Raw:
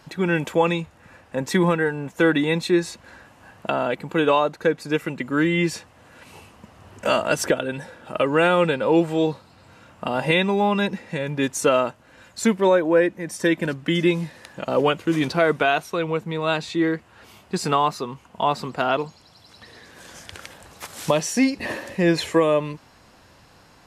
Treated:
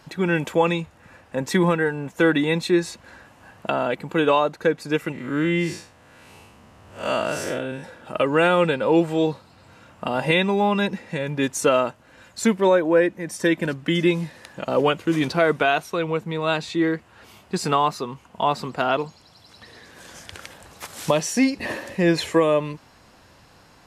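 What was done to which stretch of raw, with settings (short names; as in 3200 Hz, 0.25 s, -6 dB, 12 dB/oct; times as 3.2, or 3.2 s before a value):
5.12–7.84 time blur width 0.137 s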